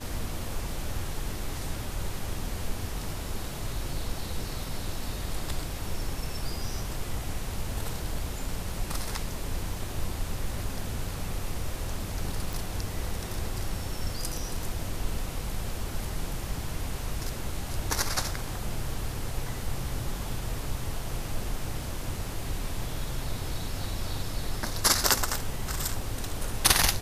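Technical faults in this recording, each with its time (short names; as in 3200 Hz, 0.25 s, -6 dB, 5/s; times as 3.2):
12.53 pop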